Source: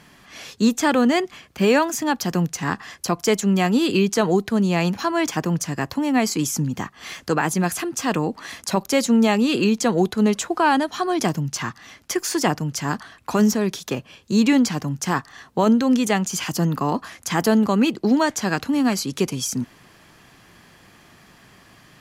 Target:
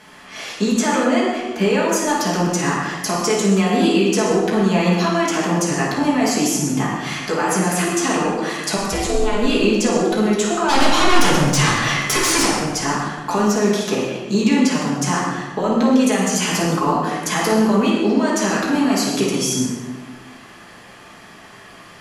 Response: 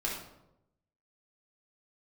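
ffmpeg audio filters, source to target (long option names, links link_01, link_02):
-filter_complex "[0:a]bass=frequency=250:gain=-10,treble=frequency=4000:gain=-1,alimiter=limit=-14dB:level=0:latency=1,asplit=3[link_01][link_02][link_03];[link_01]afade=type=out:start_time=10.68:duration=0.02[link_04];[link_02]aeval=exprs='0.2*sin(PI/2*3.98*val(0)/0.2)':channel_layout=same,afade=type=in:start_time=10.68:duration=0.02,afade=type=out:start_time=12.45:duration=0.02[link_05];[link_03]afade=type=in:start_time=12.45:duration=0.02[link_06];[link_04][link_05][link_06]amix=inputs=3:normalize=0,acompressor=threshold=-24dB:ratio=6,asplit=3[link_07][link_08][link_09];[link_07]afade=type=out:start_time=8.76:duration=0.02[link_10];[link_08]aeval=exprs='val(0)*sin(2*PI*210*n/s)':channel_layout=same,afade=type=in:start_time=8.76:duration=0.02,afade=type=out:start_time=9.4:duration=0.02[link_11];[link_09]afade=type=in:start_time=9.4:duration=0.02[link_12];[link_10][link_11][link_12]amix=inputs=3:normalize=0[link_13];[1:a]atrim=start_sample=2205,asetrate=23814,aresample=44100[link_14];[link_13][link_14]afir=irnorm=-1:irlink=0,volume=1dB"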